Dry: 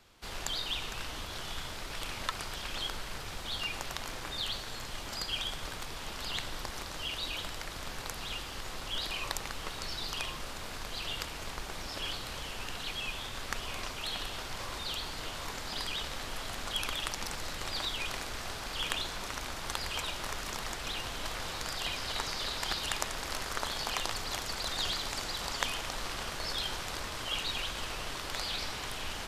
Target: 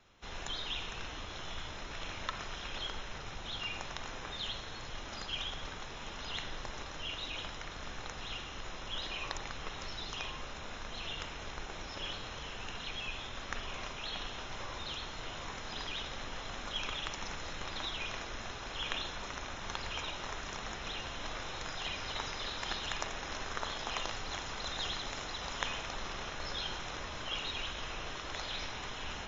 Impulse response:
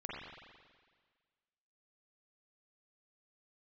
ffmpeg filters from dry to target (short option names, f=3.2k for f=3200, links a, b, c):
-filter_complex "[0:a]asuperstop=centerf=4600:order=12:qfactor=7.8,asplit=2[a][b];[1:a]atrim=start_sample=2205,atrim=end_sample=6174,lowpass=5.2k[c];[b][c]afir=irnorm=-1:irlink=0,volume=-3.5dB[d];[a][d]amix=inputs=2:normalize=0,volume=-5dB" -ar 16000 -c:a libmp3lame -b:a 32k